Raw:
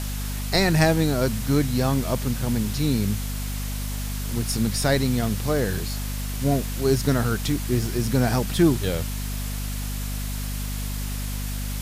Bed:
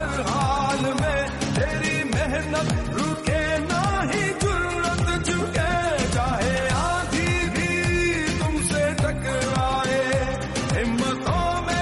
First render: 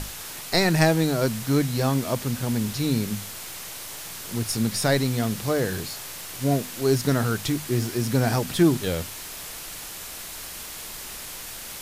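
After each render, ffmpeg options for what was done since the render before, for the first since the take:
-af "bandreject=f=50:t=h:w=6,bandreject=f=100:t=h:w=6,bandreject=f=150:t=h:w=6,bandreject=f=200:t=h:w=6,bandreject=f=250:t=h:w=6"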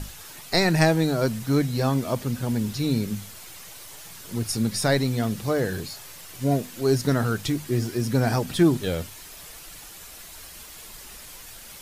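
-af "afftdn=nr=8:nf=-38"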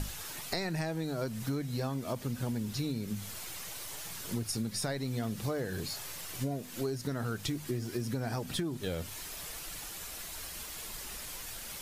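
-af "alimiter=limit=0.188:level=0:latency=1:release=469,acompressor=threshold=0.0282:ratio=10"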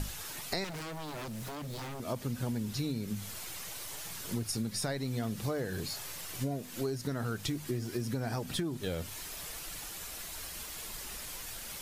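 -filter_complex "[0:a]asettb=1/sr,asplit=3[s0][s1][s2];[s0]atrim=end=0.644[s3];[s1]atrim=start=0.64:end=2,asetpts=PTS-STARTPTS,afade=t=in:d=0.004:c=qsin,afade=t=out:st=1.356:d=0.004:c=qsin,aeval=exprs='0.0168*(abs(mod(val(0)/0.0168+3,4)-2)-1)':c=same[s4];[s2]atrim=start=1.996[s5];[s3][s4]acrossfade=d=0.004:c1=hsin:c2=qsin[s6];[s6][s5]acrossfade=d=0.004:c1=qsin:c2=hsin"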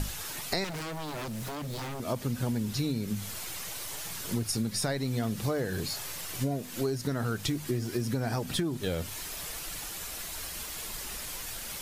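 -af "volume=1.58"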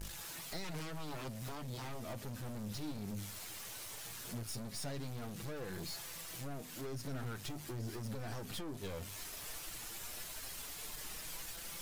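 -af "aeval=exprs='(tanh(70.8*val(0)+0.4)-tanh(0.4))/70.8':c=same,flanger=delay=5.9:depth=4.1:regen=55:speed=0.17:shape=sinusoidal"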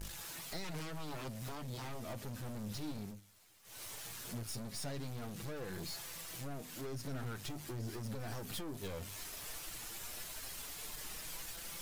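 -filter_complex "[0:a]asettb=1/sr,asplit=3[s0][s1][s2];[s0]atrim=end=8.204[s3];[s1]atrim=start=8.2:end=8.88,asetpts=PTS-STARTPTS,afade=t=in:d=0.004:c=qsin,afade=t=out:st=0.676:d=0.004:c=qsin,highshelf=f=10000:g=6[s4];[s2]atrim=start=8.876[s5];[s3][s4]acrossfade=d=0.004:c1=hsin:c2=qsin[s6];[s6][s5]acrossfade=d=0.004:c1=qsin:c2=hsin,asplit=3[s7][s8][s9];[s7]atrim=end=3.21,asetpts=PTS-STARTPTS,afade=t=out:st=3:d=0.21:silence=0.11885[s10];[s8]atrim=start=3.21:end=3.63,asetpts=PTS-STARTPTS,volume=0.119[s11];[s9]atrim=start=3.63,asetpts=PTS-STARTPTS,afade=t=in:d=0.21:silence=0.11885[s12];[s10][s11][s12]concat=n=3:v=0:a=1"

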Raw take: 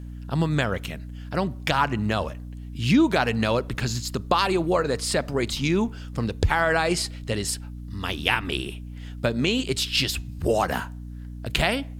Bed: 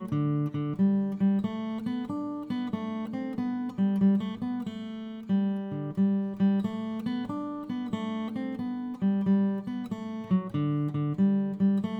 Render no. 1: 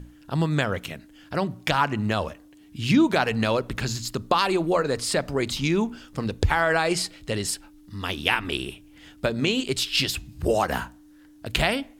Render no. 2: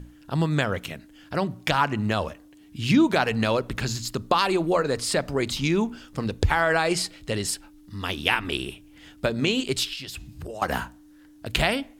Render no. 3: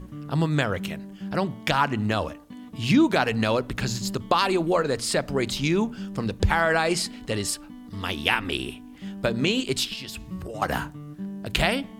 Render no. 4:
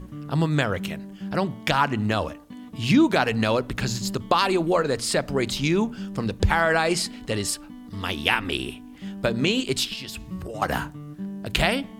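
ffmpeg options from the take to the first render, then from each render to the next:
-af "bandreject=f=60:t=h:w=6,bandreject=f=120:t=h:w=6,bandreject=f=180:t=h:w=6,bandreject=f=240:t=h:w=6"
-filter_complex "[0:a]asettb=1/sr,asplit=3[s0][s1][s2];[s0]atrim=end=9.934[s3];[s1]atrim=start=9.93:end=10.62,asetpts=PTS-STARTPTS,afade=t=in:d=0.004:c=qsin,afade=t=out:st=0.686:d=0.004:c=qsin,acompressor=threshold=0.0251:ratio=12:attack=3.2:release=140:knee=1:detection=peak[s4];[s2]atrim=start=10.616[s5];[s3][s4]acrossfade=d=0.004:c1=hsin:c2=qsin[s6];[s6][s5]acrossfade=d=0.004:c1=qsin:c2=hsin"
-filter_complex "[1:a]volume=0.299[s0];[0:a][s0]amix=inputs=2:normalize=0"
-af "volume=1.12"

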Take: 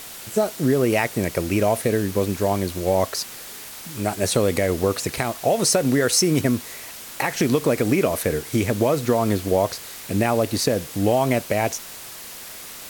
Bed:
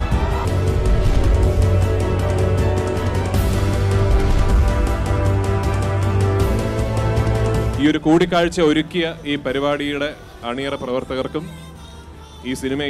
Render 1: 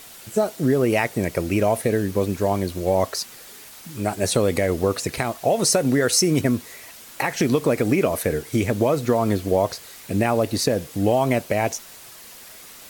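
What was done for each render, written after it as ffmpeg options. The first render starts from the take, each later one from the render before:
-af "afftdn=nr=6:nf=-38"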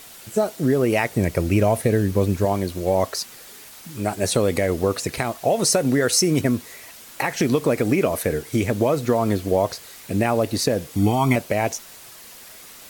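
-filter_complex "[0:a]asettb=1/sr,asplit=3[s0][s1][s2];[s0]atrim=end=1.114[s3];[s1]atrim=start=1.11:end=2.45,asetpts=PTS-STARTPTS,afade=t=in:d=0.004:c=qsin,afade=t=out:st=1.336:d=0.004:c=qsin,equalizer=f=68:w=0.5:g=7.5[s4];[s2]atrim=start=2.446[s5];[s3][s4]acrossfade=d=0.004:c1=hsin:c2=qsin[s6];[s6][s5]acrossfade=d=0.004:c1=qsin:c2=hsin,asettb=1/sr,asplit=3[s7][s8][s9];[s7]atrim=end=10.964[s10];[s8]atrim=start=10.96:end=11.36,asetpts=PTS-STARTPTS,afade=t=in:d=0.004:c=qsin,afade=t=out:st=0.396:d=0.004:c=qsin,aecho=1:1:0.9:0.88,atrim=end_sample=17640[s11];[s9]atrim=start=11.356[s12];[s10][s11]acrossfade=d=0.004:c1=hsin:c2=qsin[s13];[s13][s12]acrossfade=d=0.004:c1=qsin:c2=hsin"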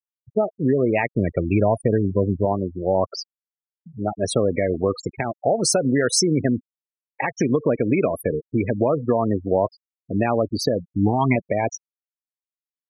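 -af "highpass=85,afftfilt=real='re*gte(hypot(re,im),0.112)':imag='im*gte(hypot(re,im),0.112)':win_size=1024:overlap=0.75"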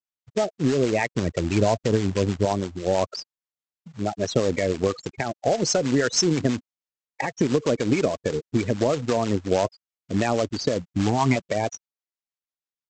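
-filter_complex "[0:a]aresample=16000,acrusher=bits=3:mode=log:mix=0:aa=0.000001,aresample=44100,acrossover=split=650[s0][s1];[s0]aeval=exprs='val(0)*(1-0.5/2+0.5/2*cos(2*PI*6.2*n/s))':c=same[s2];[s1]aeval=exprs='val(0)*(1-0.5/2-0.5/2*cos(2*PI*6.2*n/s))':c=same[s3];[s2][s3]amix=inputs=2:normalize=0"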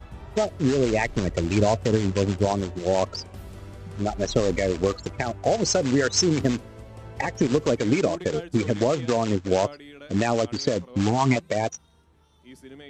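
-filter_complex "[1:a]volume=0.075[s0];[0:a][s0]amix=inputs=2:normalize=0"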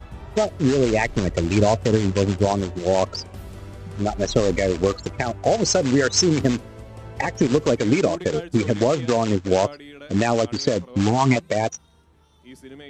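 -af "volume=1.41"

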